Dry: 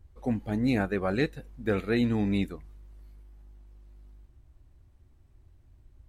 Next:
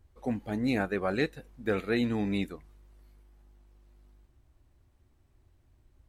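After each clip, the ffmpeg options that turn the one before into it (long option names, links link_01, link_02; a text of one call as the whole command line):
ffmpeg -i in.wav -af "lowshelf=frequency=180:gain=-8" out.wav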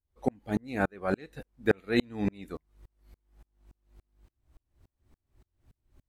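ffmpeg -i in.wav -af "aeval=exprs='val(0)*pow(10,-38*if(lt(mod(-3.5*n/s,1),2*abs(-3.5)/1000),1-mod(-3.5*n/s,1)/(2*abs(-3.5)/1000),(mod(-3.5*n/s,1)-2*abs(-3.5)/1000)/(1-2*abs(-3.5)/1000))/20)':channel_layout=same,volume=8dB" out.wav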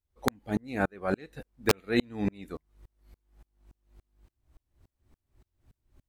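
ffmpeg -i in.wav -af "aeval=exprs='(mod(4.22*val(0)+1,2)-1)/4.22':channel_layout=same" out.wav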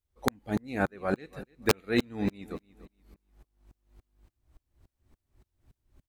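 ffmpeg -i in.wav -af "aecho=1:1:292|584|876:0.133|0.04|0.012" out.wav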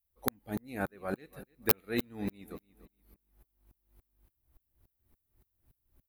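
ffmpeg -i in.wav -af "aexciter=amount=5.9:drive=5.8:freq=10000,volume=-6.5dB" out.wav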